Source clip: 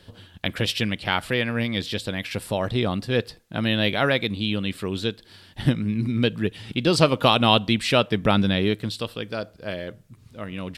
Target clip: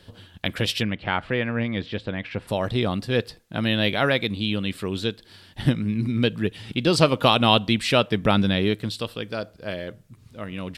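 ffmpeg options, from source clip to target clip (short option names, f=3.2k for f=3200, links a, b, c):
-filter_complex "[0:a]asplit=3[a][b][c];[a]afade=t=out:st=0.82:d=0.02[d];[b]lowpass=2.3k,afade=t=in:st=0.82:d=0.02,afade=t=out:st=2.47:d=0.02[e];[c]afade=t=in:st=2.47:d=0.02[f];[d][e][f]amix=inputs=3:normalize=0"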